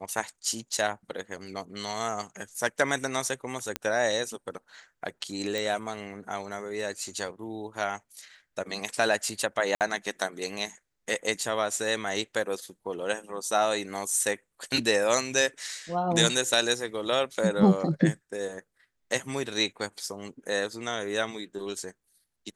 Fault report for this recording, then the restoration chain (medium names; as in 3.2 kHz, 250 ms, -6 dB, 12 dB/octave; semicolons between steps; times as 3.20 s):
3.76 s: pop -12 dBFS
5.58 s: pop
9.75–9.81 s: dropout 58 ms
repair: de-click; interpolate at 9.75 s, 58 ms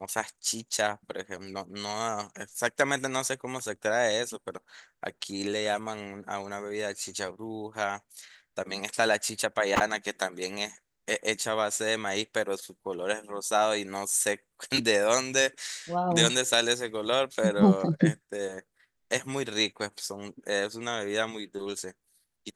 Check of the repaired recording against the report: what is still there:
nothing left